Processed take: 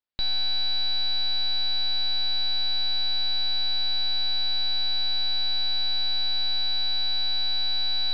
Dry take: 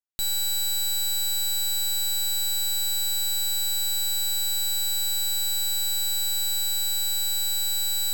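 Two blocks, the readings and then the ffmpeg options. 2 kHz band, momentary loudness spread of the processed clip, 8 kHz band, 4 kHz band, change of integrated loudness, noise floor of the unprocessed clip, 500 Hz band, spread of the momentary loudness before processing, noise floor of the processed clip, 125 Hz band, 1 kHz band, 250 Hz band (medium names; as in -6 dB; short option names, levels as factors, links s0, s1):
+3.5 dB, 0 LU, under -40 dB, +3.5 dB, -0.5 dB, -25 dBFS, +3.5 dB, 0 LU, -23 dBFS, +3.5 dB, +3.5 dB, no reading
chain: -af "aresample=11025,aresample=44100,volume=1.5"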